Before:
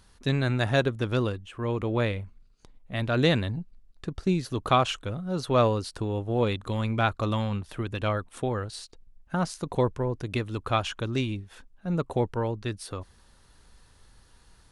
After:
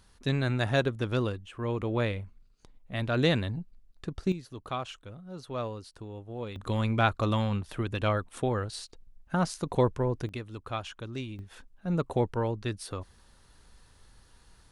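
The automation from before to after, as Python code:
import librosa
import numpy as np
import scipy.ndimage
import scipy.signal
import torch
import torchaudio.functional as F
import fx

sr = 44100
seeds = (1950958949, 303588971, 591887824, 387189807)

y = fx.gain(x, sr, db=fx.steps((0.0, -2.5), (4.32, -12.5), (6.56, 0.0), (10.29, -9.0), (11.39, -1.0)))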